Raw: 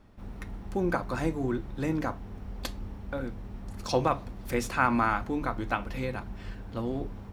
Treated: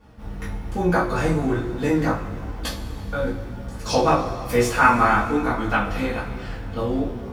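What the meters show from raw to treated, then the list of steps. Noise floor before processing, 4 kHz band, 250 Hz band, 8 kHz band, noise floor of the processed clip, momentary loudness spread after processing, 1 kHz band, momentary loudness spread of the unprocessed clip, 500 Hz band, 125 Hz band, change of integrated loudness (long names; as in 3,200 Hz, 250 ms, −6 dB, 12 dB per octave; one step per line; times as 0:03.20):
−44 dBFS, +9.5 dB, +8.0 dB, +9.5 dB, −35 dBFS, 15 LU, +9.5 dB, 16 LU, +9.0 dB, +8.0 dB, +8.5 dB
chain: coupled-rooms reverb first 0.29 s, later 2.6 s, from −18 dB, DRR −7 dB
chorus effect 1.1 Hz, delay 16 ms, depth 3.8 ms
level +4.5 dB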